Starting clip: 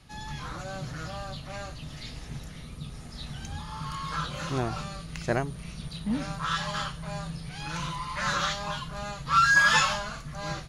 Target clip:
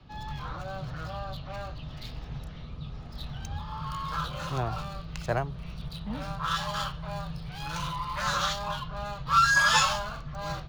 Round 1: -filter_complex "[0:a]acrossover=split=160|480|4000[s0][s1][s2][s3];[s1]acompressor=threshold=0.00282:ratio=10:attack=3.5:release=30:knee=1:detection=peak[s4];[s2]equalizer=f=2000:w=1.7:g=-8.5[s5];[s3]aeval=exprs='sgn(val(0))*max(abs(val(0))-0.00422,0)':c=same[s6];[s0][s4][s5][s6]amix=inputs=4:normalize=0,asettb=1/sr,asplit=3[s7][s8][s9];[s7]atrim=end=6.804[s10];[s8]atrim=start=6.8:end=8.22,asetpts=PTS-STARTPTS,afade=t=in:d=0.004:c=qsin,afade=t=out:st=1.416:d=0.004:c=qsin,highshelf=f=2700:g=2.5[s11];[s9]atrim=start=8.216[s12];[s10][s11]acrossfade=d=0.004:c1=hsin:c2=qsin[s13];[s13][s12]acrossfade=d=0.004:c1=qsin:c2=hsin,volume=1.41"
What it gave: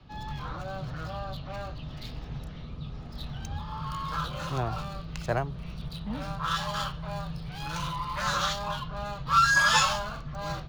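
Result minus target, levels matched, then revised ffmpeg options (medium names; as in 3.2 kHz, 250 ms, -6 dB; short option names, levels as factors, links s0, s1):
compression: peak gain reduction -5.5 dB
-filter_complex "[0:a]acrossover=split=160|480|4000[s0][s1][s2][s3];[s1]acompressor=threshold=0.00141:ratio=10:attack=3.5:release=30:knee=1:detection=peak[s4];[s2]equalizer=f=2000:w=1.7:g=-8.5[s5];[s3]aeval=exprs='sgn(val(0))*max(abs(val(0))-0.00422,0)':c=same[s6];[s0][s4][s5][s6]amix=inputs=4:normalize=0,asettb=1/sr,asplit=3[s7][s8][s9];[s7]atrim=end=6.804[s10];[s8]atrim=start=6.8:end=8.22,asetpts=PTS-STARTPTS,afade=t=in:d=0.004:c=qsin,afade=t=out:st=1.416:d=0.004:c=qsin,highshelf=f=2700:g=2.5[s11];[s9]atrim=start=8.216[s12];[s10][s11]acrossfade=d=0.004:c1=hsin:c2=qsin[s13];[s13][s12]acrossfade=d=0.004:c1=qsin:c2=hsin,volume=1.41"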